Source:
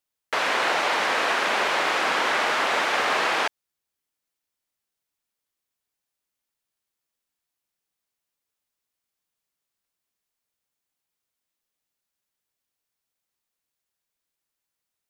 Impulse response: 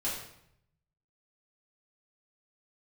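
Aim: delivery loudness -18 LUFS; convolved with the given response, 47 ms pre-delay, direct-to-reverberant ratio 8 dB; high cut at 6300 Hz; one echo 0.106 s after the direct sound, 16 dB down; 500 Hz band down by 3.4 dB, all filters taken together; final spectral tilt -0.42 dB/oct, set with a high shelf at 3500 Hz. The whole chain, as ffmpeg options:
-filter_complex "[0:a]lowpass=6.3k,equalizer=f=500:t=o:g=-4.5,highshelf=f=3.5k:g=4.5,aecho=1:1:106:0.158,asplit=2[a][b];[1:a]atrim=start_sample=2205,adelay=47[c];[b][c]afir=irnorm=-1:irlink=0,volume=-13dB[d];[a][d]amix=inputs=2:normalize=0,volume=3.5dB"

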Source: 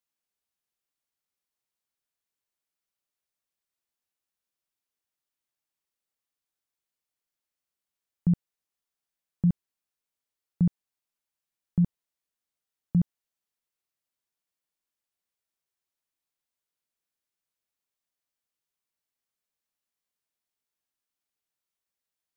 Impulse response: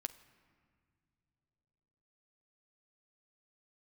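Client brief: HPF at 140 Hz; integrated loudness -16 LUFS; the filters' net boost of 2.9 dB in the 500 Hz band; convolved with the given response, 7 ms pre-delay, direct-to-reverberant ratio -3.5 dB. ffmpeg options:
-filter_complex "[0:a]highpass=140,equalizer=f=500:t=o:g=4,asplit=2[a][b];[1:a]atrim=start_sample=2205,adelay=7[c];[b][c]afir=irnorm=-1:irlink=0,volume=5.5dB[d];[a][d]amix=inputs=2:normalize=0,volume=9dB"

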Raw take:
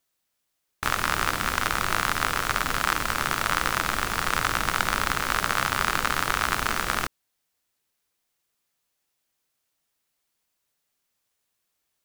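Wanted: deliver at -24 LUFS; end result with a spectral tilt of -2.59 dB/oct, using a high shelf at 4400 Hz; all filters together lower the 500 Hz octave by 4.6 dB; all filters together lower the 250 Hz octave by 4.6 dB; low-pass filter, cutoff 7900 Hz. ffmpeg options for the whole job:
-af "lowpass=7.9k,equalizer=f=250:t=o:g=-5,equalizer=f=500:t=o:g=-5,highshelf=f=4.4k:g=7.5,volume=0.5dB"

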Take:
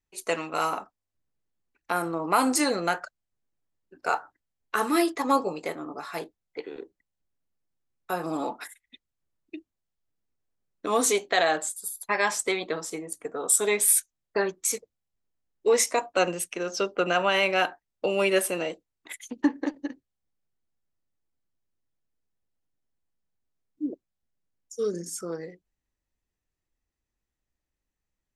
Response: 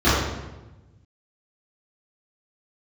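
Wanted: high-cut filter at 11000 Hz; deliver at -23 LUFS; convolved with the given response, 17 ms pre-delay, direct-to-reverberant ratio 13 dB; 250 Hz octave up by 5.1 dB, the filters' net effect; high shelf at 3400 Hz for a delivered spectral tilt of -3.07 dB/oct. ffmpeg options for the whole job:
-filter_complex "[0:a]lowpass=11k,equalizer=f=250:t=o:g=6.5,highshelf=f=3.4k:g=8,asplit=2[a][b];[1:a]atrim=start_sample=2205,adelay=17[c];[b][c]afir=irnorm=-1:irlink=0,volume=-36dB[d];[a][d]amix=inputs=2:normalize=0"

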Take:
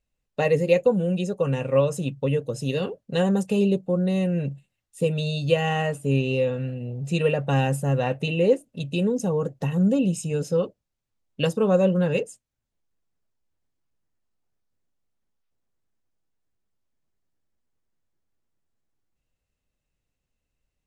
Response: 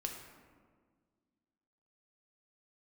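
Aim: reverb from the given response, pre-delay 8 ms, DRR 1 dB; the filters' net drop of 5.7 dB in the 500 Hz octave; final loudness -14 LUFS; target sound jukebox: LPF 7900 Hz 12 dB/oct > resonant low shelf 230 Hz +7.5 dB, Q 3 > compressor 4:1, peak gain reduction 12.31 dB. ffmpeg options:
-filter_complex "[0:a]equalizer=f=500:t=o:g=-4,asplit=2[a][b];[1:a]atrim=start_sample=2205,adelay=8[c];[b][c]afir=irnorm=-1:irlink=0,volume=-1dB[d];[a][d]amix=inputs=2:normalize=0,lowpass=7.9k,lowshelf=f=230:t=q:w=3:g=7.5,acompressor=threshold=-17dB:ratio=4,volume=6.5dB"

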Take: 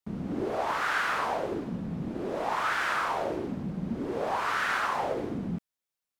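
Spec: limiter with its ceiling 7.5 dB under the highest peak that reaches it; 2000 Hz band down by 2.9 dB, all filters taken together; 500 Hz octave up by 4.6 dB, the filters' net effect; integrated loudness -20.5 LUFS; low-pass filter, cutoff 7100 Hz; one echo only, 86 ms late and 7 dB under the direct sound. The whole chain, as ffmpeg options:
-af "lowpass=7.1k,equalizer=f=500:t=o:g=6,equalizer=f=2k:t=o:g=-4.5,alimiter=limit=-22.5dB:level=0:latency=1,aecho=1:1:86:0.447,volume=10.5dB"

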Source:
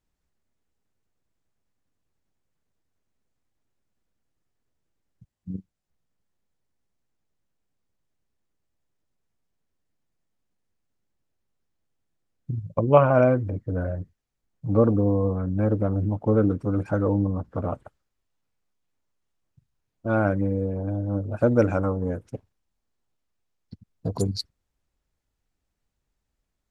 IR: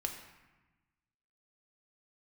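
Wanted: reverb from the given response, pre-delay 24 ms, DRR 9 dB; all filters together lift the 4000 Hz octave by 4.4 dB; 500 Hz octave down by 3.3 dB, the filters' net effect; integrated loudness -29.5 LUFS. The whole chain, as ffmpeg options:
-filter_complex "[0:a]equalizer=f=500:t=o:g=-4,equalizer=f=4k:t=o:g=5,asplit=2[a][b];[1:a]atrim=start_sample=2205,adelay=24[c];[b][c]afir=irnorm=-1:irlink=0,volume=-10dB[d];[a][d]amix=inputs=2:normalize=0,volume=-4.5dB"

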